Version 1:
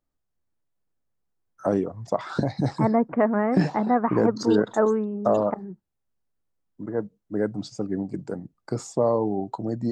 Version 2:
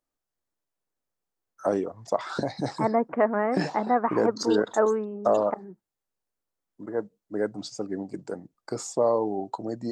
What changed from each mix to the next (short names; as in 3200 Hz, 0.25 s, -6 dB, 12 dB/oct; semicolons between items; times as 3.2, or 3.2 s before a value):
master: add tone controls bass -11 dB, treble +4 dB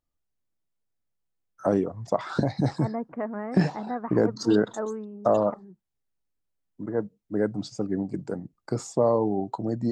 second voice -10.5 dB; master: add tone controls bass +11 dB, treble -4 dB